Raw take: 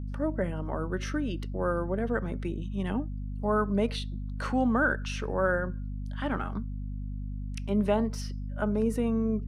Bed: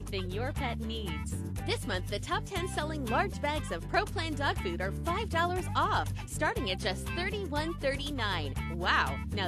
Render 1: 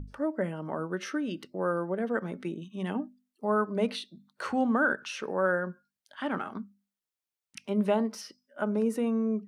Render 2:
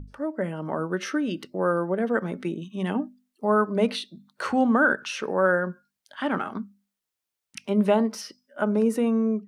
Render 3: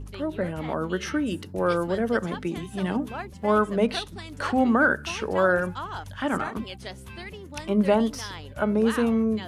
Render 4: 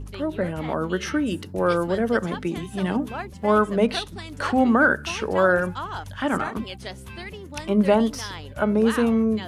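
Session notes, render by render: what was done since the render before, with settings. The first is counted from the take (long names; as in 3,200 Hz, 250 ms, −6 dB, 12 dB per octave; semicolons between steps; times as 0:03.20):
mains-hum notches 50/100/150/200/250 Hz
automatic gain control gain up to 5.5 dB
mix in bed −6 dB
level +2.5 dB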